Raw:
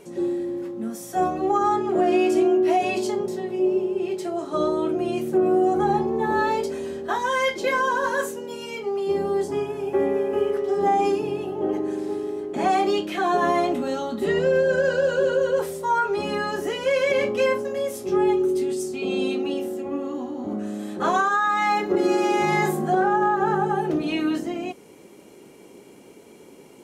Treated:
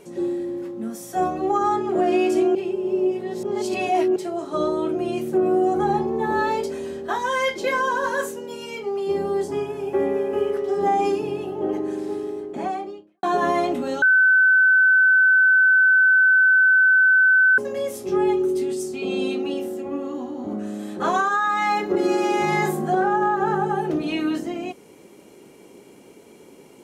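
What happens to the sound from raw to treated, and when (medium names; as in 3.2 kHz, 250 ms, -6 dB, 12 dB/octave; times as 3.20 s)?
2.55–4.16 s: reverse
12.19–13.23 s: studio fade out
14.02–17.58 s: bleep 1.52 kHz -12 dBFS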